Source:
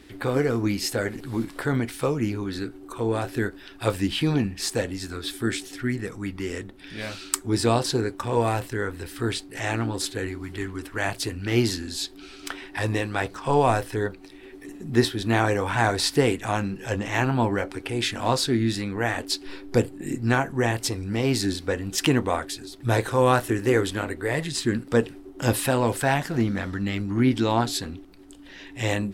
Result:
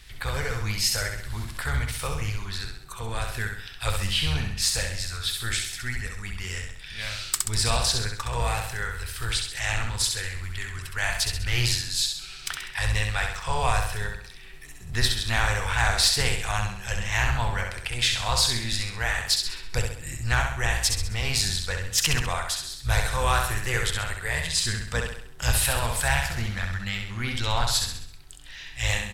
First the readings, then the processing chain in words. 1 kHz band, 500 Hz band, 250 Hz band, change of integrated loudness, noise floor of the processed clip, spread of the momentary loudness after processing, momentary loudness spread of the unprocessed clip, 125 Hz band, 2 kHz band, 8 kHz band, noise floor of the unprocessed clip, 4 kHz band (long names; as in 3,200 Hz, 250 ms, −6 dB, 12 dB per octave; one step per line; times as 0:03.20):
−3.0 dB, −11.0 dB, −15.0 dB, −0.5 dB, −42 dBFS, 11 LU, 11 LU, −1.5 dB, +2.5 dB, +5.5 dB, −45 dBFS, +5.5 dB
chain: sub-octave generator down 1 octave, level −4 dB
guitar amp tone stack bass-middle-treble 10-0-10
repeating echo 66 ms, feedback 48%, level −5 dB
hard clipping −19 dBFS, distortion −20 dB
low-shelf EQ 64 Hz +8.5 dB
highs frequency-modulated by the lows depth 0.2 ms
level +6 dB